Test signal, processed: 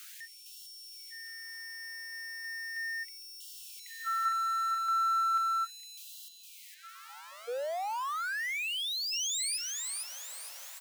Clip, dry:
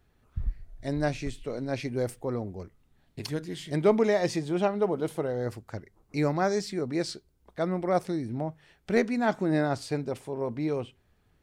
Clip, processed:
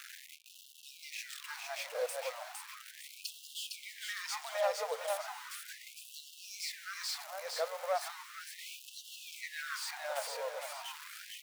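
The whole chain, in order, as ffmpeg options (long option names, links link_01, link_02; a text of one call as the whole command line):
ffmpeg -i in.wav -af "aeval=exprs='val(0)+0.5*0.0266*sgn(val(0))':channel_layout=same,aecho=1:1:459|918|1377|1836|2295:0.668|0.247|0.0915|0.0339|0.0125,afftfilt=real='re*gte(b*sr/1024,450*pow(2700/450,0.5+0.5*sin(2*PI*0.36*pts/sr)))':imag='im*gte(b*sr/1024,450*pow(2700/450,0.5+0.5*sin(2*PI*0.36*pts/sr)))':win_size=1024:overlap=0.75,volume=-6.5dB" out.wav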